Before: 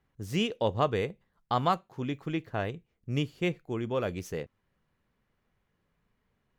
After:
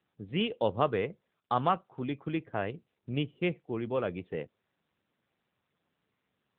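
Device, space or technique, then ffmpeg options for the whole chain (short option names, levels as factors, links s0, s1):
mobile call with aggressive noise cancelling: -filter_complex "[0:a]asettb=1/sr,asplit=3[s0][s1][s2];[s0]atrim=end=3.104[s3];[s1]atrim=start=3.1:end=3.86,asetpts=PTS-STARTPTS,afade=t=in:d=0.004:c=qsin,afade=t=out:st=0.756:d=0.004:c=qsin,lowpass=f=7100:w=0.5412,lowpass=f=7100:w=1.3066[s4];[s2]atrim=start=3.856[s5];[s3][s4]acrossfade=d=0.004:c1=hsin:c2=qsin[s6];[s6][s5]acrossfade=d=0.004:c1=qsin:c2=hsin,highpass=f=120:p=1,afftdn=nr=14:nf=-54" -ar 8000 -c:a libopencore_amrnb -b:a 10200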